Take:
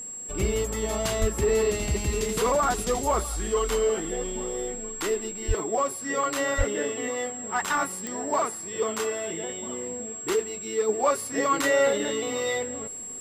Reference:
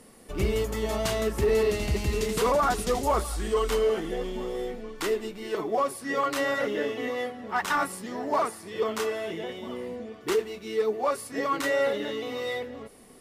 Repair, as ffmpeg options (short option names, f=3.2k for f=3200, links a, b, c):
-filter_complex "[0:a]adeclick=t=4,bandreject=f=7.6k:w=30,asplit=3[a][b][c];[a]afade=t=out:st=1.2:d=0.02[d];[b]highpass=f=140:w=0.5412,highpass=f=140:w=1.3066,afade=t=in:st=1.2:d=0.02,afade=t=out:st=1.32:d=0.02[e];[c]afade=t=in:st=1.32:d=0.02[f];[d][e][f]amix=inputs=3:normalize=0,asplit=3[g][h][i];[g]afade=t=out:st=5.47:d=0.02[j];[h]highpass=f=140:w=0.5412,highpass=f=140:w=1.3066,afade=t=in:st=5.47:d=0.02,afade=t=out:st=5.59:d=0.02[k];[i]afade=t=in:st=5.59:d=0.02[l];[j][k][l]amix=inputs=3:normalize=0,asplit=3[m][n][o];[m]afade=t=out:st=6.57:d=0.02[p];[n]highpass=f=140:w=0.5412,highpass=f=140:w=1.3066,afade=t=in:st=6.57:d=0.02,afade=t=out:st=6.69:d=0.02[q];[o]afade=t=in:st=6.69:d=0.02[r];[p][q][r]amix=inputs=3:normalize=0,asetnsamples=n=441:p=0,asendcmd='10.89 volume volume -3.5dB',volume=0dB"